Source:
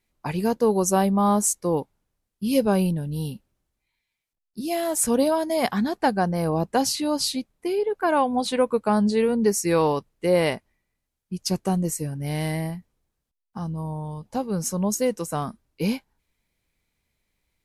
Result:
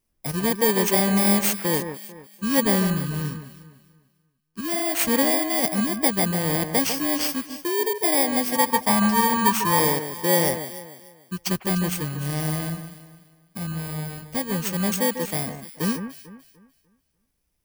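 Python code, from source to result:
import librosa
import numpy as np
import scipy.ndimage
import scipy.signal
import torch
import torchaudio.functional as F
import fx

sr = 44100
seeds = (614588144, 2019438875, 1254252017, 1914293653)

p1 = fx.bit_reversed(x, sr, seeds[0], block=32)
p2 = fx.graphic_eq_15(p1, sr, hz=(100, 400, 1000), db=(9, -11, 12), at=(8.55, 9.8))
y = p2 + fx.echo_alternate(p2, sr, ms=148, hz=2100.0, feedback_pct=53, wet_db=-8, dry=0)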